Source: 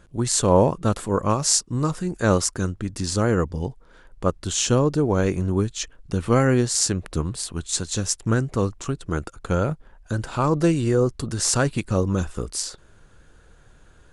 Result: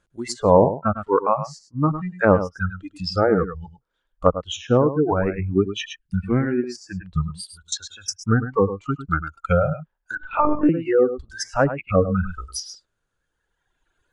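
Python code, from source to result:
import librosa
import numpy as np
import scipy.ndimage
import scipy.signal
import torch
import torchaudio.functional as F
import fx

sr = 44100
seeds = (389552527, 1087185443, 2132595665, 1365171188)

p1 = fx.noise_reduce_blind(x, sr, reduce_db=22)
p2 = fx.rider(p1, sr, range_db=5, speed_s=0.5)
p3 = p1 + (p2 * librosa.db_to_amplitude(3.0))
p4 = fx.dereverb_blind(p3, sr, rt60_s=1.9)
p5 = fx.level_steps(p4, sr, step_db=22, at=(7.45, 8.2))
p6 = p5 + fx.echo_single(p5, sr, ms=103, db=-11.5, dry=0)
p7 = fx.lpc_monotone(p6, sr, seeds[0], pitch_hz=300.0, order=16, at=(10.15, 10.69))
p8 = fx.low_shelf(p7, sr, hz=490.0, db=-7.5)
p9 = fx.env_lowpass_down(p8, sr, base_hz=1000.0, full_db=-17.5)
p10 = fx.band_shelf(p9, sr, hz=760.0, db=-14.5, octaves=1.7, at=(5.74, 6.64))
y = p10 * librosa.db_to_amplitude(2.5)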